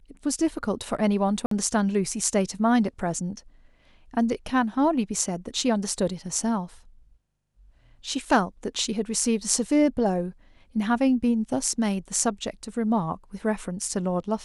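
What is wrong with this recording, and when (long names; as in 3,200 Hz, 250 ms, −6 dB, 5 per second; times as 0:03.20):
0:01.46–0:01.51: drop-out 53 ms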